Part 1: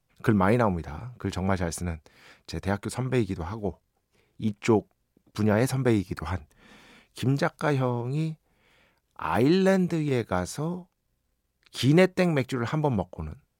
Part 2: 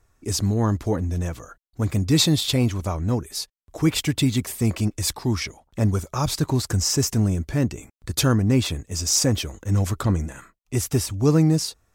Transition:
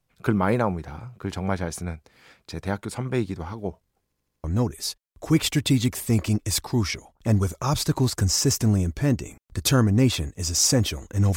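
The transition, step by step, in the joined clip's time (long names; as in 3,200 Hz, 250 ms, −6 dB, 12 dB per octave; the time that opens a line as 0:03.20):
part 1
0:04.04: stutter in place 0.08 s, 5 plays
0:04.44: continue with part 2 from 0:02.96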